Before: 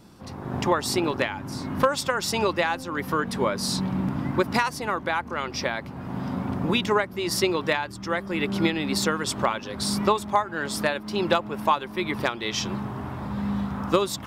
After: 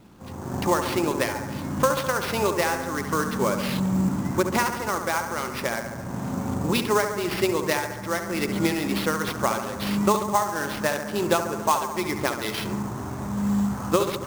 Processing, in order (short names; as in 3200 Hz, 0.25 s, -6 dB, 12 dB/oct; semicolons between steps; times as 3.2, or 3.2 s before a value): high shelf 4900 Hz -7 dB; analogue delay 69 ms, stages 1024, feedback 69%, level -8 dB; sample-rate reducer 7500 Hz, jitter 20%